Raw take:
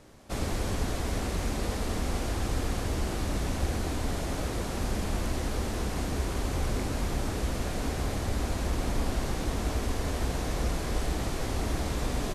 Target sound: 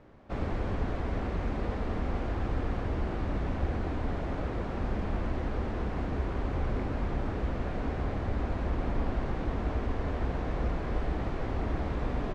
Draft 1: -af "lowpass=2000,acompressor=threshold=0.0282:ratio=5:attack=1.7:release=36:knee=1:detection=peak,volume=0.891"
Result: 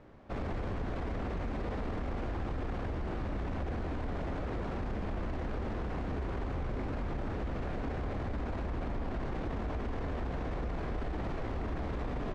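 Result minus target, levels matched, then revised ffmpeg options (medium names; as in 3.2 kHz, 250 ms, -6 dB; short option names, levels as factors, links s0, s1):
compression: peak gain reduction +9.5 dB
-af "lowpass=2000,volume=0.891"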